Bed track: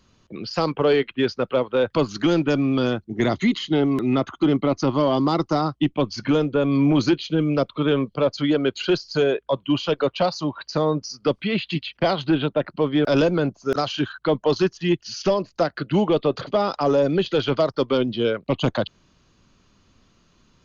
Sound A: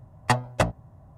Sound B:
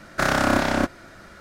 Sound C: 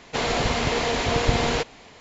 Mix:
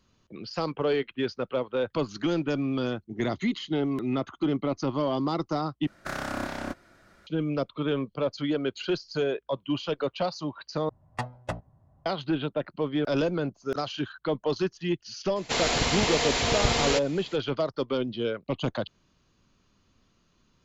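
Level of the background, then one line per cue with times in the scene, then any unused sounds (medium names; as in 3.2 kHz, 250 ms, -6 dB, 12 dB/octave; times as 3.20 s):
bed track -7.5 dB
5.87 s: replace with B -12.5 dB
10.89 s: replace with A -10.5 dB + treble shelf 8.5 kHz -12 dB
15.36 s: add C -4.5 dB + treble shelf 3.1 kHz +10 dB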